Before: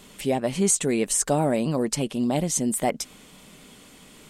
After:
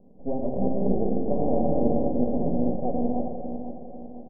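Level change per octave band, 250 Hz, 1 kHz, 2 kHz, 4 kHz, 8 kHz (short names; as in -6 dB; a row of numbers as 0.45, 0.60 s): +0.5 dB, -2.0 dB, under -40 dB, under -40 dB, under -40 dB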